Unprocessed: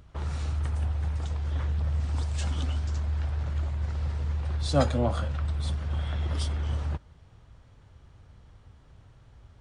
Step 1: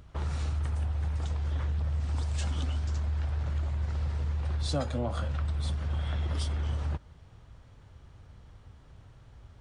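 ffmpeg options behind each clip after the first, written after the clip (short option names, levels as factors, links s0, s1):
-af "acompressor=threshold=0.0398:ratio=5,volume=1.12"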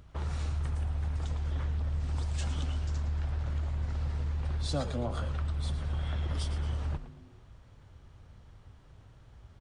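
-filter_complex "[0:a]asplit=5[s0][s1][s2][s3][s4];[s1]adelay=112,afreqshift=-110,volume=0.266[s5];[s2]adelay=224,afreqshift=-220,volume=0.106[s6];[s3]adelay=336,afreqshift=-330,volume=0.0427[s7];[s4]adelay=448,afreqshift=-440,volume=0.017[s8];[s0][s5][s6][s7][s8]amix=inputs=5:normalize=0,volume=0.794"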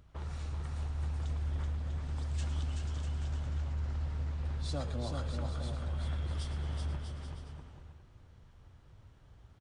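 -af "aecho=1:1:380|646|832.2|962.5|1054:0.631|0.398|0.251|0.158|0.1,volume=0.501"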